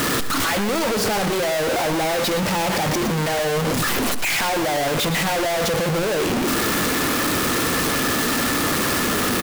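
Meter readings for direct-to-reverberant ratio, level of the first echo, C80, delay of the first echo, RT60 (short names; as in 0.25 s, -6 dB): none, -11.0 dB, none, 0.119 s, none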